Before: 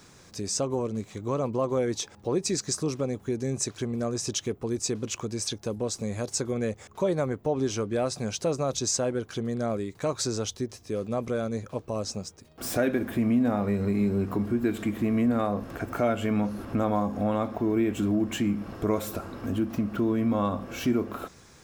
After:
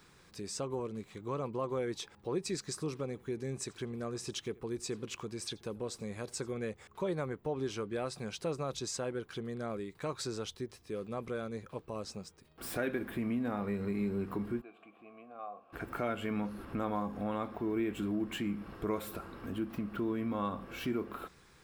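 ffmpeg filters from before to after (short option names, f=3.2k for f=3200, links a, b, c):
-filter_complex "[0:a]asettb=1/sr,asplit=3[a][b][c];[a]atrim=end=2.634[d];[b]atrim=start=2.63:end=6.65,asetpts=PTS-STARTPTS,afade=t=in:d=0.004:c=qsin,afade=t=out:st=4.016:d=0.004:c=qsin,aecho=1:1:84:0.0668,atrim=end_sample=177282[e];[c]atrim=start=6.646[f];[d][e]acrossfade=d=0.004:c1=hsin:c2=qsin[g];[g][f]acrossfade=d=0.004:c1=qsin:c2=hsin,asplit=3[h][i][j];[h]afade=t=out:st=14.6:d=0.02[k];[i]asplit=3[l][m][n];[l]bandpass=f=730:t=q:w=8,volume=0dB[o];[m]bandpass=f=1.09k:t=q:w=8,volume=-6dB[p];[n]bandpass=f=2.44k:t=q:w=8,volume=-9dB[q];[o][p][q]amix=inputs=3:normalize=0,afade=t=in:st=14.6:d=0.02,afade=t=out:st=15.72:d=0.02[r];[j]afade=t=in:st=15.72:d=0.02[s];[k][r][s]amix=inputs=3:normalize=0,equalizer=f=100:t=o:w=0.67:g=-8,equalizer=f=250:t=o:w=0.67:g=-6,equalizer=f=630:t=o:w=0.67:g=-7,equalizer=f=6.3k:t=o:w=0.67:g=-10,equalizer=f=16k:t=o:w=0.67:g=-4,volume=-4.5dB"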